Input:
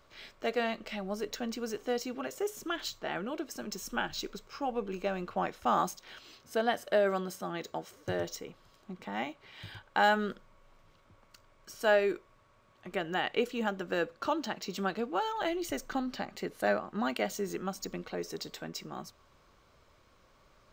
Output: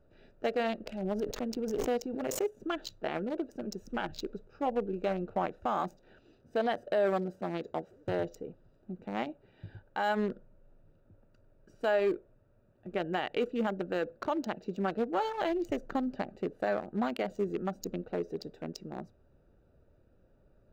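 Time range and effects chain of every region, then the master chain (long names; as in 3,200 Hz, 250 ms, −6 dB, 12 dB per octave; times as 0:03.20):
0:00.86–0:02.60: mu-law and A-law mismatch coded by A + background raised ahead of every attack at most 29 dB per second
whole clip: adaptive Wiener filter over 41 samples; brickwall limiter −26 dBFS; dynamic equaliser 610 Hz, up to +4 dB, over −50 dBFS, Q 0.88; level +2.5 dB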